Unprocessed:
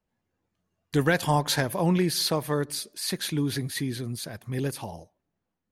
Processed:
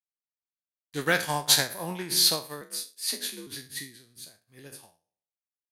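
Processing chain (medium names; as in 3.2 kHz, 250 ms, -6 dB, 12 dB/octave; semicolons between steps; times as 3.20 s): spectral sustain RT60 0.65 s; tilt EQ +2 dB/octave; 2.61–3.47 s: frequency shift +54 Hz; upward expansion 2.5:1, over -44 dBFS; trim +1.5 dB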